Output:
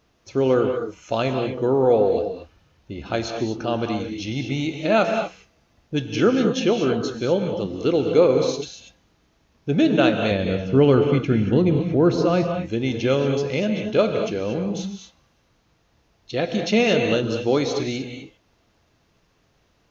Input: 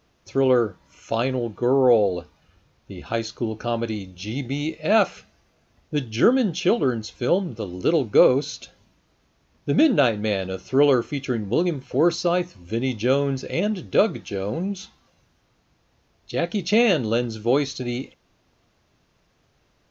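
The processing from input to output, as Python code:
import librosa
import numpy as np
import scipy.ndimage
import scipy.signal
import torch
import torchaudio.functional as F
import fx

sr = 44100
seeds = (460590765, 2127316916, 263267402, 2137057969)

y = fx.bass_treble(x, sr, bass_db=9, treble_db=-10, at=(10.31, 12.54))
y = fx.rev_gated(y, sr, seeds[0], gate_ms=260, shape='rising', drr_db=4.5)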